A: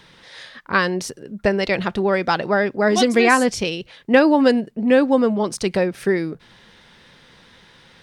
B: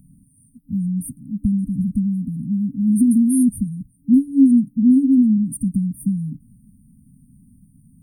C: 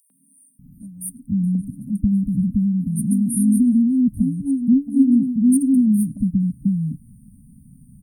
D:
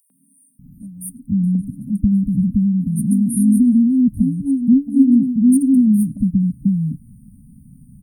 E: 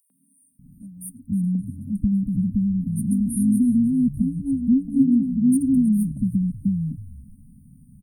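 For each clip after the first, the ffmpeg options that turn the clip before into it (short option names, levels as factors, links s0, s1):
-af "afftfilt=real='re*(1-between(b*sr/4096,290,8700))':imag='im*(1-between(b*sr/4096,290,8700))':win_size=4096:overlap=0.75,volume=2.11"
-filter_complex "[0:a]asplit=2[s0][s1];[s1]acompressor=threshold=0.0794:ratio=6,volume=0.841[s2];[s0][s2]amix=inputs=2:normalize=0,acrossover=split=320|4200[s3][s4][s5];[s4]adelay=100[s6];[s3]adelay=590[s7];[s7][s6][s5]amix=inputs=3:normalize=0,volume=0.891"
-af "equalizer=f=4200:w=0.3:g=-6,volume=1.41"
-filter_complex "[0:a]asplit=4[s0][s1][s2][s3];[s1]adelay=318,afreqshift=-91,volume=0.15[s4];[s2]adelay=636,afreqshift=-182,volume=0.0462[s5];[s3]adelay=954,afreqshift=-273,volume=0.0145[s6];[s0][s4][s5][s6]amix=inputs=4:normalize=0,volume=0.531"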